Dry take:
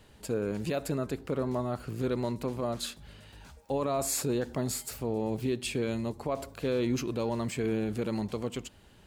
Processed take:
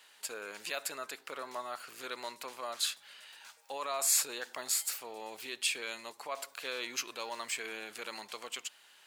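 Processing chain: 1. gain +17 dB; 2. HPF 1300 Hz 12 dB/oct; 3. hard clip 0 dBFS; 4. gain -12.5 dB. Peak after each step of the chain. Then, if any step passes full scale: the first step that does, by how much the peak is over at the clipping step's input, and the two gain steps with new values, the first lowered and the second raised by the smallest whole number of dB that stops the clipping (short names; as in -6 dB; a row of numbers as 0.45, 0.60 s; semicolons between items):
-3.0, -3.0, -3.0, -15.5 dBFS; no overload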